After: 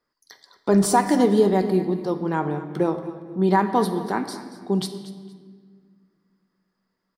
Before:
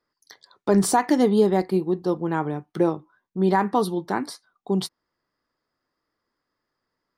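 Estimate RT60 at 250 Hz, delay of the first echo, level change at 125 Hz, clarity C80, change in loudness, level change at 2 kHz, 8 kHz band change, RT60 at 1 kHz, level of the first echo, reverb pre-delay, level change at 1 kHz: 2.6 s, 232 ms, +1.5 dB, 10.0 dB, +0.5 dB, +1.0 dB, +0.5 dB, 1.5 s, −15.5 dB, 4 ms, +1.5 dB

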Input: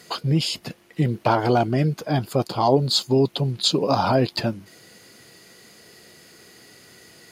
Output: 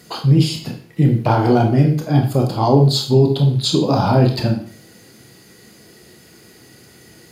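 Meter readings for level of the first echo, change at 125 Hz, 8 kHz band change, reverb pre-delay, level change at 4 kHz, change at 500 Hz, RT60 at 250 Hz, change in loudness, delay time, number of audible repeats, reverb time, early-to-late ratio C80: no echo audible, +9.5 dB, +1.5 dB, 24 ms, +1.0 dB, +3.5 dB, 0.50 s, +6.0 dB, no echo audible, no echo audible, 0.50 s, 11.5 dB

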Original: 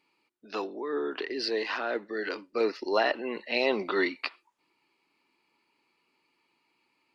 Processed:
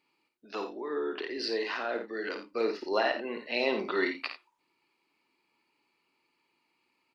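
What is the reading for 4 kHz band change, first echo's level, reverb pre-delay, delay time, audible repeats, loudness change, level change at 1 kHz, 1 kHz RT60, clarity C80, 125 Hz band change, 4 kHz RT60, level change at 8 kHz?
−2.0 dB, −7.5 dB, no reverb audible, 53 ms, 2, −2.0 dB, −2.0 dB, no reverb audible, no reverb audible, can't be measured, no reverb audible, can't be measured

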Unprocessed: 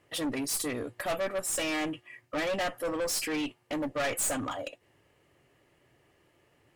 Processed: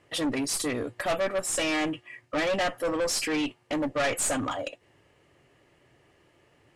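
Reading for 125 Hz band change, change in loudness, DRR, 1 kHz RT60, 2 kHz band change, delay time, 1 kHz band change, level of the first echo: +4.0 dB, +3.5 dB, no reverb audible, no reverb audible, +4.0 dB, no echo audible, +4.0 dB, no echo audible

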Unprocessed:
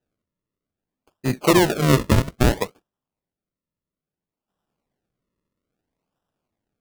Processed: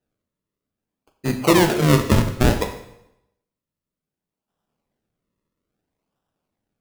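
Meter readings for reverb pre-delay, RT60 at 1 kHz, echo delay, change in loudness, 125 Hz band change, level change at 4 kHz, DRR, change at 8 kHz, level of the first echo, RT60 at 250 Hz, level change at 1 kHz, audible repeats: 7 ms, 0.85 s, no echo audible, +1.0 dB, +1.0 dB, +1.0 dB, 6.0 dB, +1.0 dB, no echo audible, 0.80 s, +1.0 dB, no echo audible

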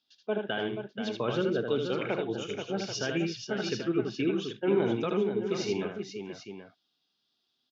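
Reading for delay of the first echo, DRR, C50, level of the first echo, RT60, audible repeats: 78 ms, no reverb audible, no reverb audible, −4.5 dB, no reverb audible, 3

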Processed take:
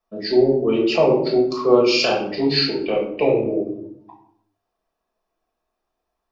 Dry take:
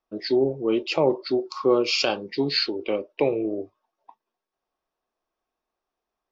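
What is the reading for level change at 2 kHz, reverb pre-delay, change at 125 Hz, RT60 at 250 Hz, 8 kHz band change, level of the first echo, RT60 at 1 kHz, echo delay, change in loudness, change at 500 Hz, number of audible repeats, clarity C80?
+4.5 dB, 5 ms, +7.0 dB, 1.1 s, can't be measured, no echo audible, 0.60 s, no echo audible, +5.5 dB, +6.0 dB, no echo audible, 9.5 dB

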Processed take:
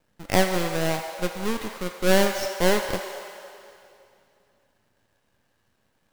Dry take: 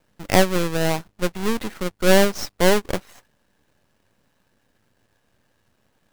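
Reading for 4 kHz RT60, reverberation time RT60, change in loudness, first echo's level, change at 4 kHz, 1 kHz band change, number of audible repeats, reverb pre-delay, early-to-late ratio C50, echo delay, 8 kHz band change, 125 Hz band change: 2.4 s, 2.6 s, −3.5 dB, no echo audible, −3.0 dB, −2.5 dB, no echo audible, 8 ms, 5.0 dB, no echo audible, −3.0 dB, −4.5 dB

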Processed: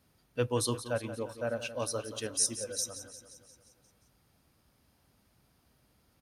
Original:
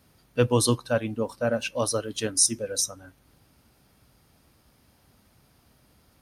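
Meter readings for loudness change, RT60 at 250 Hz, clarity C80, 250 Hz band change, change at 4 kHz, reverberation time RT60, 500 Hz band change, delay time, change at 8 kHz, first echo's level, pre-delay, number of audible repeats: −8.0 dB, no reverb audible, no reverb audible, −10.0 dB, −7.5 dB, no reverb audible, −8.0 dB, 176 ms, −7.5 dB, −12.5 dB, no reverb audible, 5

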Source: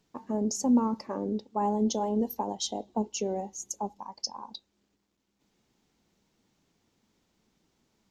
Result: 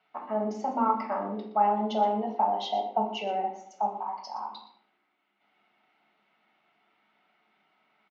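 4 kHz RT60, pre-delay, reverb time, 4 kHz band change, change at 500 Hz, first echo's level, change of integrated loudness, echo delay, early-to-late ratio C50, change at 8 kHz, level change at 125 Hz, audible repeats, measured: 0.45 s, 5 ms, 0.60 s, −2.0 dB, +2.0 dB, −13.0 dB, +1.5 dB, 119 ms, 6.5 dB, below −20 dB, can't be measured, 1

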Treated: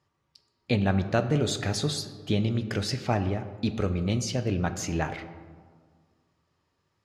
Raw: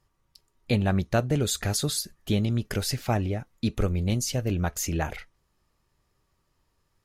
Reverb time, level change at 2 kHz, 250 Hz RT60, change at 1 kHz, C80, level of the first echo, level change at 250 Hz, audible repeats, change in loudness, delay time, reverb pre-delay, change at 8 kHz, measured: 1.7 s, +0.5 dB, 2.1 s, +0.5 dB, 12.5 dB, no echo audible, 0.0 dB, no echo audible, −0.5 dB, no echo audible, 7 ms, −5.5 dB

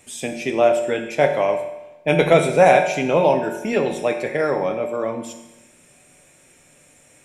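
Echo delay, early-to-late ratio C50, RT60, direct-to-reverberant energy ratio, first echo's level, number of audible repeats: no echo audible, 8.0 dB, 1.0 s, 5.0 dB, no echo audible, no echo audible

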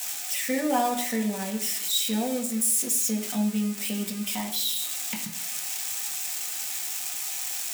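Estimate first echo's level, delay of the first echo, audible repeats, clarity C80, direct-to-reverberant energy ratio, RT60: no echo audible, no echo audible, no echo audible, 11.5 dB, 0.5 dB, 1.0 s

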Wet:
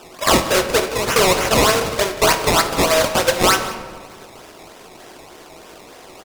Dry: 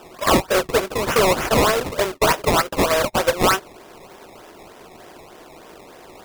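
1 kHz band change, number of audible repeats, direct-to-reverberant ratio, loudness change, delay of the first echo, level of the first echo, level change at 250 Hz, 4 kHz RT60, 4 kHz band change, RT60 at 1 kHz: +2.0 dB, 1, 6.5 dB, +2.5 dB, 181 ms, −16.5 dB, +1.0 dB, 0.85 s, +5.5 dB, 1.5 s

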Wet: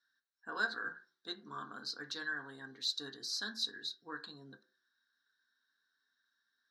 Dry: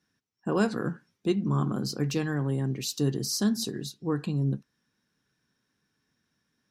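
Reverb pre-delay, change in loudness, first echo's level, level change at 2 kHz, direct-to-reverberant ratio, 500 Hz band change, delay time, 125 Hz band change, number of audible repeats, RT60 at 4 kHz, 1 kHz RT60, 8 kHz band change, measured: 3 ms, −10.5 dB, no echo audible, +2.0 dB, 6.0 dB, −20.0 dB, no echo audible, −33.0 dB, no echo audible, 0.20 s, 0.40 s, −13.0 dB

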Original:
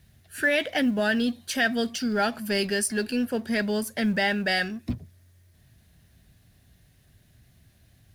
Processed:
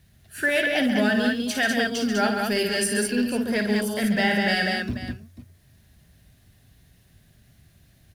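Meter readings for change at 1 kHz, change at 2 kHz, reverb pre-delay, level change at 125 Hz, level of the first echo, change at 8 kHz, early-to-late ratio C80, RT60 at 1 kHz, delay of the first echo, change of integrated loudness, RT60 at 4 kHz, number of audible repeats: +3.0 dB, +2.5 dB, no reverb audible, +3.0 dB, −9.0 dB, +2.5 dB, no reverb audible, no reverb audible, 53 ms, +3.0 dB, no reverb audible, 4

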